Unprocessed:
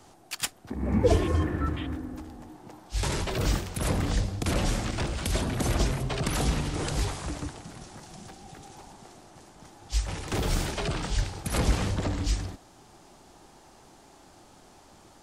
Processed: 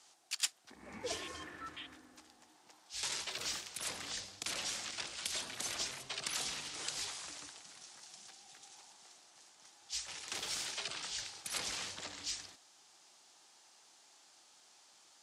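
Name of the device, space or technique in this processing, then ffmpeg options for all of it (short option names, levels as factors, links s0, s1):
piezo pickup straight into a mixer: -af "lowpass=5800,aderivative,volume=1.5"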